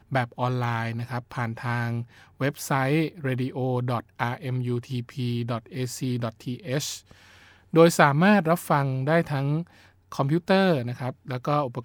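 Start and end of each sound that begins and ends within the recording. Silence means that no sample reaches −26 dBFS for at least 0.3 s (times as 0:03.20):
0:02.41–0:06.95
0:07.74–0:09.61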